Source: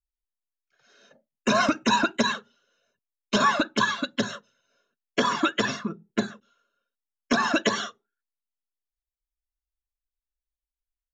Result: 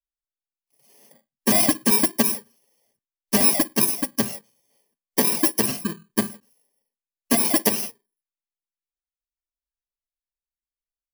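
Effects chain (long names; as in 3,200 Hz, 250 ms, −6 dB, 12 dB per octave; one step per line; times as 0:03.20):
samples in bit-reversed order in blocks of 32 samples
noise reduction from a noise print of the clip's start 14 dB
level +3.5 dB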